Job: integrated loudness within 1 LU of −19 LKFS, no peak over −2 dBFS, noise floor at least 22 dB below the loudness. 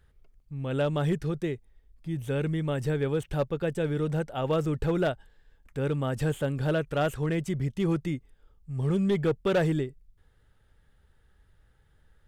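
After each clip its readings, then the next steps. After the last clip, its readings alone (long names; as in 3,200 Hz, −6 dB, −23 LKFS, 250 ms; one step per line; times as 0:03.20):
share of clipped samples 0.5%; peaks flattened at −19.0 dBFS; integrated loudness −29.0 LKFS; sample peak −19.0 dBFS; target loudness −19.0 LKFS
→ clipped peaks rebuilt −19 dBFS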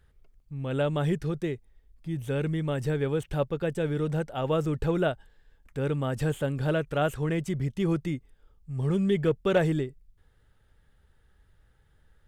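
share of clipped samples 0.0%; integrated loudness −29.0 LKFS; sample peak −10.0 dBFS; target loudness −19.0 LKFS
→ level +10 dB
brickwall limiter −2 dBFS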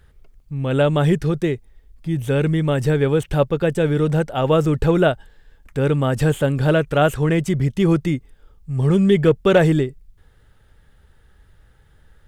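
integrated loudness −19.0 LKFS; sample peak −2.0 dBFS; background noise floor −54 dBFS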